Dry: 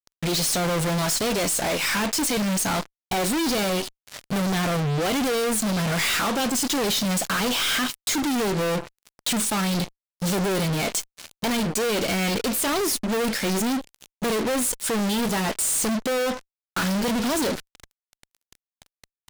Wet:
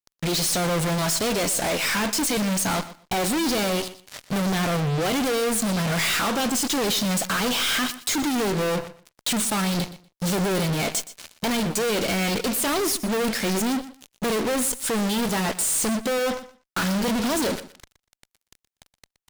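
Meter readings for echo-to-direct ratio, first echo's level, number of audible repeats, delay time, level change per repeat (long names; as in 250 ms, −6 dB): −15.5 dB, −15.5 dB, 2, 121 ms, −15.5 dB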